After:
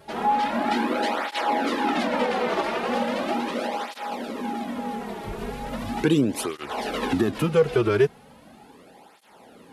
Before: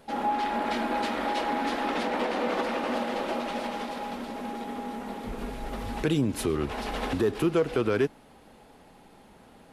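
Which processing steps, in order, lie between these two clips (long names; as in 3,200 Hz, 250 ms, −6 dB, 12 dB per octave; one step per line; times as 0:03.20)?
through-zero flanger with one copy inverted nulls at 0.38 Hz, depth 4.1 ms
level +7 dB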